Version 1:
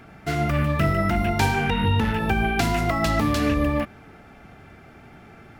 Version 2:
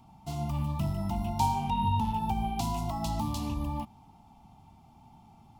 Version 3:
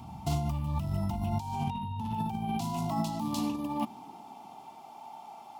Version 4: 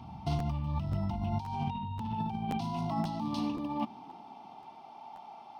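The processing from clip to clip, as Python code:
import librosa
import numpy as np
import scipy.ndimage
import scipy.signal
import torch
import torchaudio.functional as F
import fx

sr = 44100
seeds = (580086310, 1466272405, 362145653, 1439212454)

y1 = fx.curve_eq(x, sr, hz=(230.0, 510.0, 910.0, 1600.0, 3000.0, 7100.0), db=(0, -20, 10, -28, -4, 1))
y1 = F.gain(torch.from_numpy(y1), -8.0).numpy()
y2 = fx.over_compress(y1, sr, threshold_db=-37.0, ratio=-1.0)
y2 = fx.filter_sweep_highpass(y2, sr, from_hz=68.0, to_hz=560.0, start_s=1.21, end_s=5.08, q=1.5)
y2 = F.gain(torch.from_numpy(y2), 4.0).numpy()
y3 = scipy.signal.savgol_filter(y2, 15, 4, mode='constant')
y3 = fx.buffer_crackle(y3, sr, first_s=0.38, period_s=0.53, block=512, kind='repeat')
y3 = F.gain(torch.from_numpy(y3), -1.5).numpy()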